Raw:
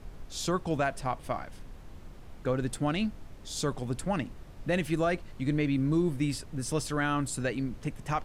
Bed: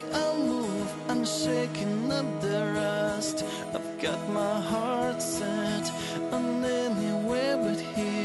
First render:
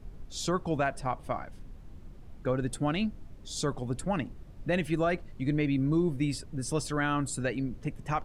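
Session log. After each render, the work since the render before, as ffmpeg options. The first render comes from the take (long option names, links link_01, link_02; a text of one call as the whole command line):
ffmpeg -i in.wav -af "afftdn=noise_reduction=8:noise_floor=-48" out.wav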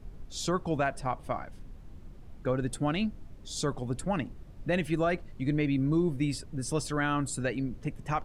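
ffmpeg -i in.wav -af anull out.wav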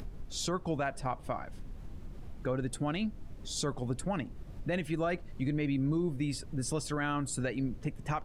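ffmpeg -i in.wav -af "alimiter=limit=-23dB:level=0:latency=1:release=204,acompressor=mode=upward:threshold=-36dB:ratio=2.5" out.wav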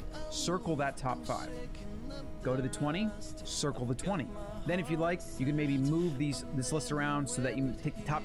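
ffmpeg -i in.wav -i bed.wav -filter_complex "[1:a]volume=-17dB[link_01];[0:a][link_01]amix=inputs=2:normalize=0" out.wav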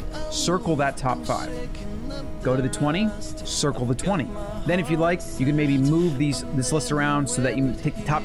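ffmpeg -i in.wav -af "volume=10.5dB" out.wav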